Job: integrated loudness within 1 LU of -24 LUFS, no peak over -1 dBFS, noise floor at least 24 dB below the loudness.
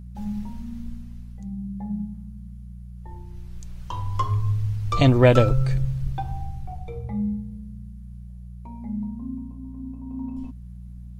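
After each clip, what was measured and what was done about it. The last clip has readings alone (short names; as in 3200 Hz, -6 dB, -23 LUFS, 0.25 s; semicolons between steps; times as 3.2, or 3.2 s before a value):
hum 60 Hz; harmonics up to 180 Hz; hum level -36 dBFS; loudness -25.5 LUFS; peak -3.5 dBFS; loudness target -24.0 LUFS
-> de-hum 60 Hz, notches 3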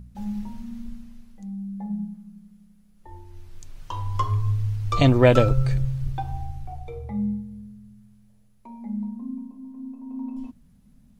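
hum none; loudness -25.5 LUFS; peak -4.5 dBFS; loudness target -24.0 LUFS
-> gain +1.5 dB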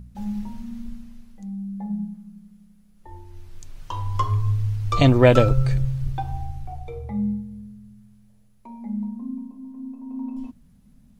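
loudness -24.0 LUFS; peak -3.0 dBFS; noise floor -55 dBFS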